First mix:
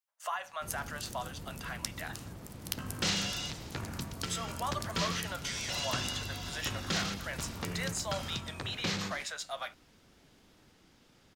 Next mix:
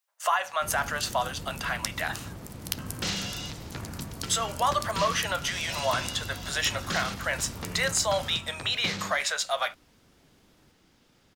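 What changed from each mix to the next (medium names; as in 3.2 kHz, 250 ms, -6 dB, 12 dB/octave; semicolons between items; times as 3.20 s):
speech +11.0 dB; first sound +5.0 dB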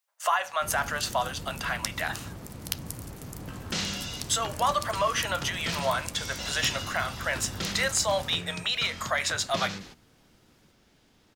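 second sound: entry +0.70 s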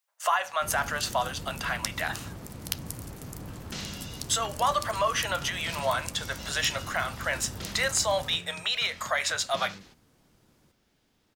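second sound -7.5 dB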